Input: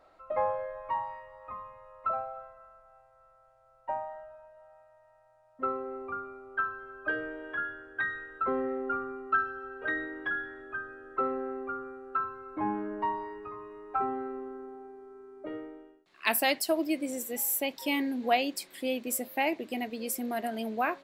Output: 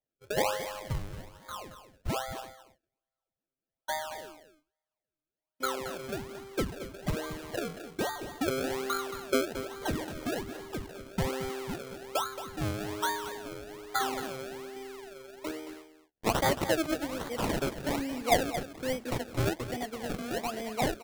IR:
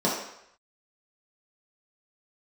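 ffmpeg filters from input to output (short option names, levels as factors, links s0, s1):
-filter_complex "[0:a]agate=range=0.0224:threshold=0.00355:ratio=16:detection=peak,asettb=1/sr,asplit=3[s0][s1][s2];[s0]atrim=end=14.764[s3];[s1]atrim=start=14.76:end=15.51,asetpts=PTS-STARTPTS,afade=t=in:d=0.004:c=qsin,afade=t=out:st=0.746:d=0.004:c=qsin,lowshelf=f=310:g=11.5[s4];[s2]atrim=start=15.506[s5];[s3][s4]acrossfade=d=0.004:c1=hsin:c2=qsin[s6];[s6][s5]acrossfade=d=0.004:c1=qsin:c2=hsin,acrossover=split=250|1900[s7][s8][s9];[s7]acompressor=threshold=0.00224:ratio=6[s10];[s10][s8][s9]amix=inputs=3:normalize=0,acrusher=samples=32:mix=1:aa=0.000001:lfo=1:lforange=32:lforate=1.2,aecho=1:1:224:0.266"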